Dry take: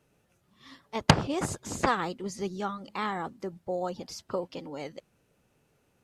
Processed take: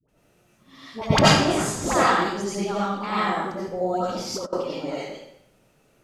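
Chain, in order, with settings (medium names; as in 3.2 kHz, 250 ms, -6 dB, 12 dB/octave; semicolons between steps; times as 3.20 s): phase dispersion highs, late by 87 ms, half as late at 680 Hz; reverberation RT60 0.75 s, pre-delay 50 ms, DRR -8.5 dB; 4.09–4.53 s: compressor with a negative ratio -30 dBFS, ratio -0.5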